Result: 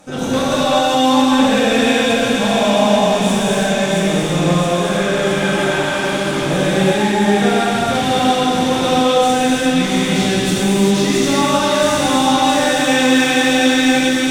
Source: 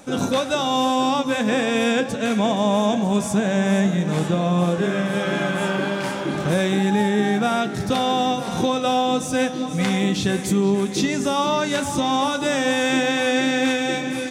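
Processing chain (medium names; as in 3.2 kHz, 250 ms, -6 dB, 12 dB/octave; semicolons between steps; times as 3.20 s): Chebyshev shaper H 6 -22 dB, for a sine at -10 dBFS; feedback echo behind a high-pass 670 ms, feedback 77%, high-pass 2.4 kHz, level -4.5 dB; gated-style reverb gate 430 ms flat, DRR -7.5 dB; trim -2.5 dB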